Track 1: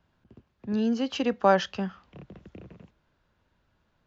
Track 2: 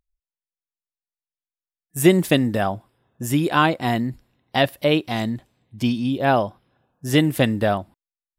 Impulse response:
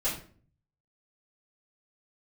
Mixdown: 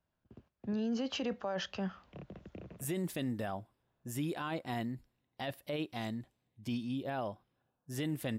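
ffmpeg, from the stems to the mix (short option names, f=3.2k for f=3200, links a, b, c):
-filter_complex "[0:a]agate=range=-12dB:threshold=-59dB:ratio=16:detection=peak,equalizer=f=620:t=o:w=0.45:g=4.5,alimiter=limit=-14dB:level=0:latency=1:release=268,volume=-3dB[a];[1:a]adelay=850,volume=-14.5dB[b];[a][b]amix=inputs=2:normalize=0,alimiter=level_in=4dB:limit=-24dB:level=0:latency=1:release=17,volume=-4dB"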